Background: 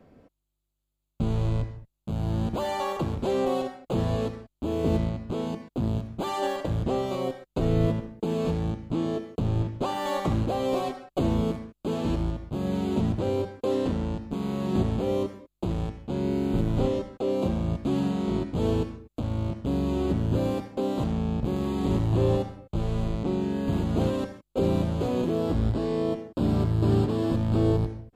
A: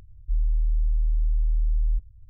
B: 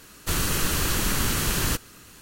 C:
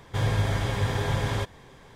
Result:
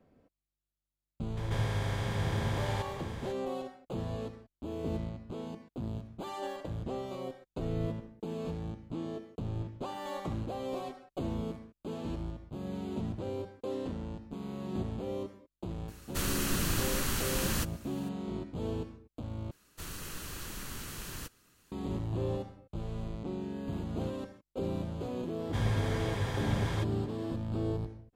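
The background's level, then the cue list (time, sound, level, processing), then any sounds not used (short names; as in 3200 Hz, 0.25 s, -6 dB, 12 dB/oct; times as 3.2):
background -10.5 dB
1.37 add C -10.5 dB + per-bin compression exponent 0.4
15.88 add B -8 dB
19.51 replace with B -17.5 dB
25.39 add C -7 dB
not used: A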